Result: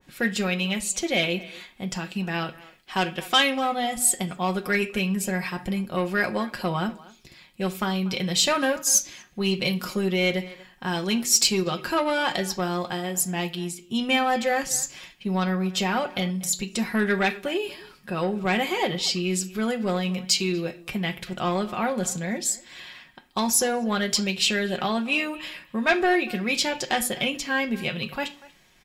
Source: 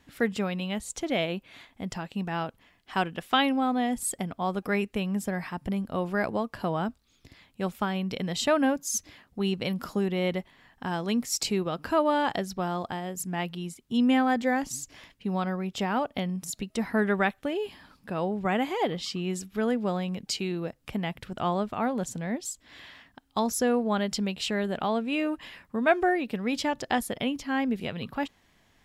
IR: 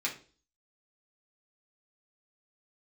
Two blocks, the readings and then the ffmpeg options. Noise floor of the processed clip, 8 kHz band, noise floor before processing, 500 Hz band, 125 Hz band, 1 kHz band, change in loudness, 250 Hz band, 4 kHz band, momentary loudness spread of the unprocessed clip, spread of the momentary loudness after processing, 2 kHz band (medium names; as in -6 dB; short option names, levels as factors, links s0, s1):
-54 dBFS, +11.0 dB, -65 dBFS, +2.0 dB, +3.5 dB, +2.0 dB, +4.0 dB, +1.0 dB, +9.0 dB, 10 LU, 10 LU, +6.5 dB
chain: -filter_complex "[0:a]bandreject=f=2100:w=19,aecho=1:1:5.5:0.53,asplit=2[s0][s1];[s1]adelay=240,highpass=300,lowpass=3400,asoftclip=type=hard:threshold=0.133,volume=0.1[s2];[s0][s2]amix=inputs=2:normalize=0,asoftclip=type=tanh:threshold=0.15,asplit=2[s3][s4];[1:a]atrim=start_sample=2205,highshelf=f=3500:g=8.5[s5];[s4][s5]afir=irnorm=-1:irlink=0,volume=0.355[s6];[s3][s6]amix=inputs=2:normalize=0,adynamicequalizer=threshold=0.01:dfrequency=1700:dqfactor=0.7:tfrequency=1700:tqfactor=0.7:attack=5:release=100:ratio=0.375:range=2.5:mode=boostabove:tftype=highshelf"